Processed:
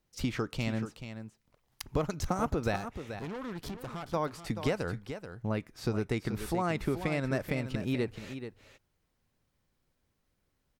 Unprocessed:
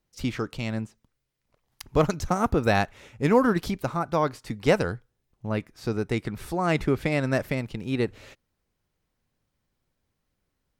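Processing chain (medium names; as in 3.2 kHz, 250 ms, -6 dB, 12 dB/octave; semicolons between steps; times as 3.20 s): compression 6:1, threshold -27 dBFS, peak gain reduction 12.5 dB; 2.76–4.14 s: valve stage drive 36 dB, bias 0.7; on a send: delay 432 ms -10 dB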